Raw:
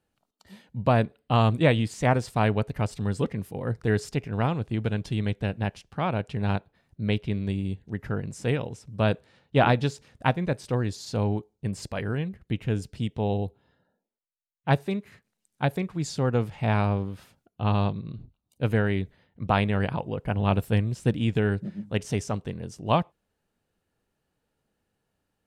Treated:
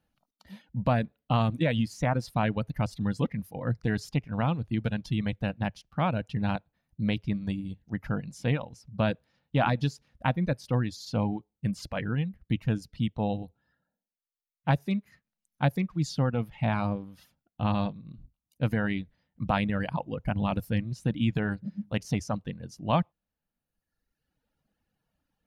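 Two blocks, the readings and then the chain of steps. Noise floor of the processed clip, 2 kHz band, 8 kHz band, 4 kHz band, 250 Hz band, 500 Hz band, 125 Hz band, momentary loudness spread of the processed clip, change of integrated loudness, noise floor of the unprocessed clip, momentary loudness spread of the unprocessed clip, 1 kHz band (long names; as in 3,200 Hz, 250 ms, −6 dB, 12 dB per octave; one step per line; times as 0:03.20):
below −85 dBFS, −3.0 dB, −5.0 dB, −3.0 dB, −1.0 dB, −5.5 dB, −3.0 dB, 7 LU, −3.0 dB, −80 dBFS, 9 LU, −3.5 dB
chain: low-shelf EQ 280 Hz +5 dB
brickwall limiter −12.5 dBFS, peak gain reduction 7 dB
reverb reduction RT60 1.3 s
thirty-one-band graphic EQ 100 Hz −9 dB, 400 Hz −12 dB, 8,000 Hz −11 dB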